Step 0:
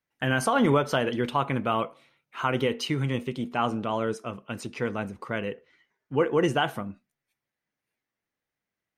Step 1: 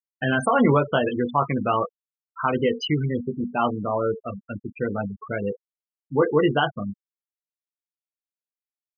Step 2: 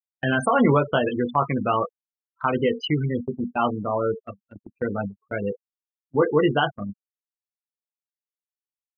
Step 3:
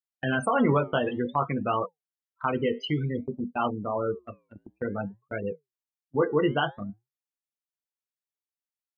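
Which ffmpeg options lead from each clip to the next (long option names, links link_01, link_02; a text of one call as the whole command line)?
ffmpeg -i in.wav -filter_complex "[0:a]asplit=2[link_01][link_02];[link_02]adelay=20,volume=-6dB[link_03];[link_01][link_03]amix=inputs=2:normalize=0,afftfilt=real='re*gte(hypot(re,im),0.0708)':imag='im*gte(hypot(re,im),0.0708)':win_size=1024:overlap=0.75,volume=3dB" out.wav
ffmpeg -i in.wav -af "agate=range=-33dB:threshold=-29dB:ratio=16:detection=peak" out.wav
ffmpeg -i in.wav -af "flanger=delay=2.1:depth=7.5:regen=-86:speed=0.55:shape=triangular" out.wav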